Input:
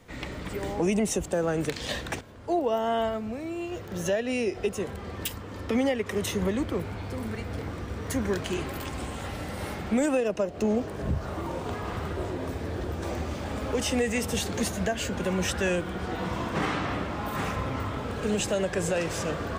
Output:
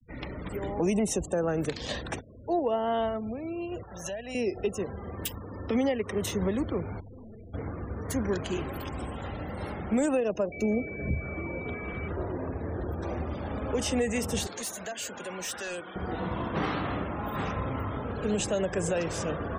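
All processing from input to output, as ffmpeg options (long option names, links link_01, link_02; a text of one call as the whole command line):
ffmpeg -i in.wav -filter_complex "[0:a]asettb=1/sr,asplit=3[link_01][link_02][link_03];[link_01]atrim=end=3.834[link_04];[link_02]atrim=start=3.83:end=4.35,asetpts=PTS-STARTPTS,afade=type=in:duration=0.004:curve=qsin,afade=type=out:start_time=0.516:duration=0.004:curve=qsin,lowshelf=frequency=530:width_type=q:width=1.5:gain=-9,aeval=exprs='val(0)+0.00316*(sin(2*PI*60*n/s)+sin(2*PI*2*60*n/s)/2+sin(2*PI*3*60*n/s)/3+sin(2*PI*4*60*n/s)/4+sin(2*PI*5*60*n/s)/5)':channel_layout=same,acrossover=split=370|3000[link_05][link_06][link_07];[link_06]acompressor=threshold=-39dB:ratio=2.5:attack=3.2:release=140:knee=2.83:detection=peak[link_08];[link_05][link_08][link_07]amix=inputs=3:normalize=0[link_09];[link_03]atrim=start=4.346[link_10];[link_04][link_09]acrossfade=duration=0.004:curve1=hsin:curve2=qsin[link_11];[link_11][link_10]acrossfade=duration=0.004:curve1=qsin:curve2=hsin,asettb=1/sr,asplit=3[link_12][link_13][link_14];[link_12]atrim=end=7.004[link_15];[link_13]atrim=start=7:end=7.54,asetpts=PTS-STARTPTS,afade=type=in:duration=0.004:curve=qsin,afade=type=out:start_time=0.536:duration=0.004:curve=qsin,lowpass=frequency=1800:poles=1,aeval=exprs='(tanh(158*val(0)+0.35)-tanh(0.35))/158':channel_layout=same[link_16];[link_14]atrim=start=7.536[link_17];[link_15][link_16]acrossfade=duration=0.004:curve1=hsin:curve2=qsin[link_18];[link_18][link_17]acrossfade=duration=0.004:curve1=qsin:curve2=hsin,asettb=1/sr,asplit=3[link_19][link_20][link_21];[link_19]atrim=end=10.524[link_22];[link_20]atrim=start=10.52:end=12.08,asetpts=PTS-STARTPTS,afade=type=in:duration=0.004:curve=qsin,afade=type=out:start_time=1.556:duration=0.004:curve=qsin,aeval=exprs='val(0)+0.0178*sin(2*PI*2300*n/s)':channel_layout=same,equalizer=frequency=930:width_type=o:width=0.86:gain=-9,bandreject=frequency=50:width_type=h:width=6,bandreject=frequency=100:width_type=h:width=6,bandreject=frequency=150:width_type=h:width=6[link_23];[link_21]atrim=start=12.076[link_24];[link_22][link_23]acrossfade=duration=0.004:curve1=hsin:curve2=qsin[link_25];[link_25][link_24]acrossfade=duration=0.004:curve1=qsin:curve2=hsin,asettb=1/sr,asplit=3[link_26][link_27][link_28];[link_26]atrim=end=14.474[link_29];[link_27]atrim=start=14.47:end=15.96,asetpts=PTS-STARTPTS,afade=type=in:duration=0.004:curve=qsin,afade=type=out:start_time=1.486:duration=0.004:curve=qsin,highpass=frequency=960:poles=1,highshelf=frequency=5600:gain=6.5,asoftclip=type=hard:threshold=-30dB[link_30];[link_28]atrim=start=15.956[link_31];[link_29][link_30]acrossfade=duration=0.004:curve1=hsin:curve2=qsin[link_32];[link_32][link_31]acrossfade=duration=0.004:curve1=qsin:curve2=hsin,afftfilt=real='re*gte(hypot(re,im),0.01)':imag='im*gte(hypot(re,im),0.01)':win_size=1024:overlap=0.75,equalizer=frequency=2200:width=1.1:gain=-3.5,acontrast=85,volume=-8dB" out.wav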